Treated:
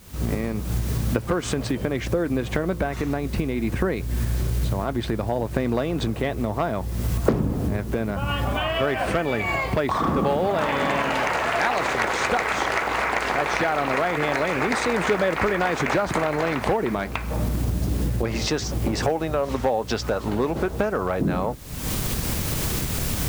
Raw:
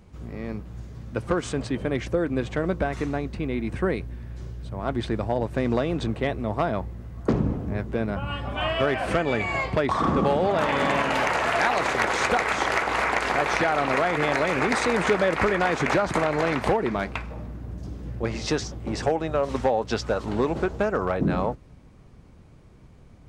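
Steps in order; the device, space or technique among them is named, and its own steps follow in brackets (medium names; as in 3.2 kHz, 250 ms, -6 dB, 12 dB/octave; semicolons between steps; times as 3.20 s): cheap recorder with automatic gain (white noise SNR 28 dB; recorder AGC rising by 57 dB/s)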